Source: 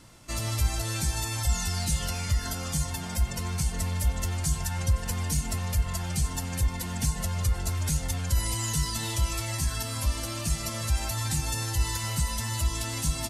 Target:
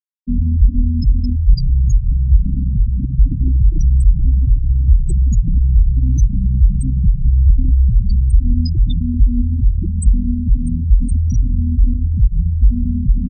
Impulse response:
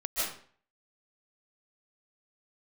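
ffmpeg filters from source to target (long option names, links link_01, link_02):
-filter_complex "[0:a]lowshelf=frequency=570:width_type=q:width=3:gain=12.5,acrossover=split=96|1100[link_01][link_02][link_03];[link_01]acompressor=threshold=-12dB:ratio=4[link_04];[link_02]acompressor=threshold=-27dB:ratio=4[link_05];[link_03]acompressor=threshold=-38dB:ratio=4[link_06];[link_04][link_05][link_06]amix=inputs=3:normalize=0,acrusher=bits=4:mix=0:aa=0.000001,bass=frequency=250:gain=-2,treble=frequency=4000:gain=7,bandreject=frequency=50:width_type=h:width=6,bandreject=frequency=100:width_type=h:width=6,bandreject=frequency=150:width_type=h:width=6,bandreject=frequency=200:width_type=h:width=6,asetrate=32097,aresample=44100,atempo=1.37395,aecho=1:1:920|1840|2760:0.0794|0.0365|0.0168,asplit=2[link_07][link_08];[1:a]atrim=start_sample=2205,adelay=79[link_09];[link_08][link_09]afir=irnorm=-1:irlink=0,volume=-22dB[link_10];[link_07][link_10]amix=inputs=2:normalize=0,acontrast=79,afftfilt=real='re*gte(hypot(re,im),0.398)':imag='im*gte(hypot(re,im),0.398)':win_size=1024:overlap=0.75,volume=3dB"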